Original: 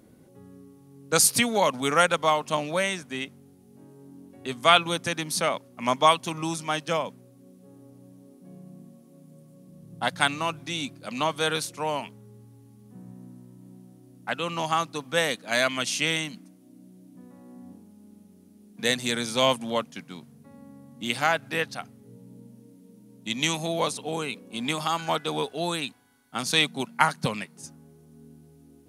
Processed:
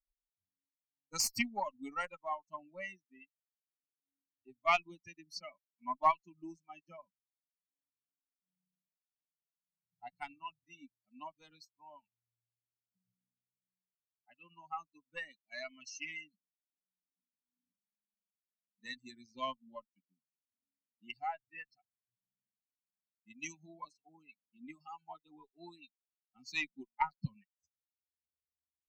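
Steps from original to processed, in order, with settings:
spectral dynamics exaggerated over time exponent 3
harmonic generator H 3 −24 dB, 4 −28 dB, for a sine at −7 dBFS
phaser with its sweep stopped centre 2,300 Hz, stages 8
level −3 dB

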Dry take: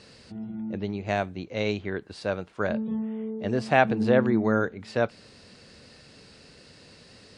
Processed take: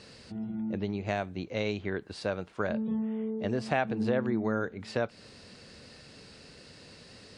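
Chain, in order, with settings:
downward compressor 2.5 to 1, threshold −28 dBFS, peak gain reduction 10 dB

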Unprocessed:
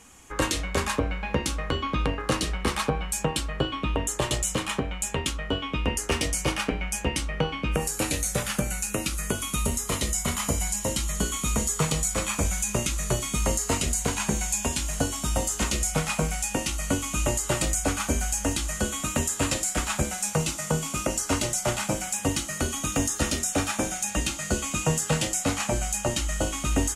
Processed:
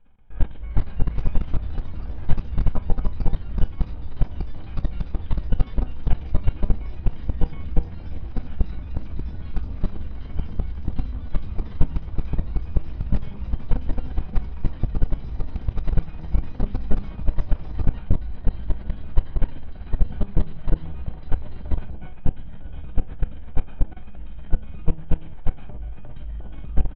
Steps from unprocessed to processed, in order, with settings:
lower of the sound and its delayed copy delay 1.3 ms
spectral tilt −3.5 dB per octave
single-tap delay 848 ms −21 dB
downsampling to 8,000 Hz
rectangular room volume 41 cubic metres, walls mixed, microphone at 0.43 metres
pitch-shifted copies added −12 semitones −4 dB
output level in coarse steps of 21 dB
delay with pitch and tempo change per echo 463 ms, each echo +4 semitones, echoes 2
level −8.5 dB

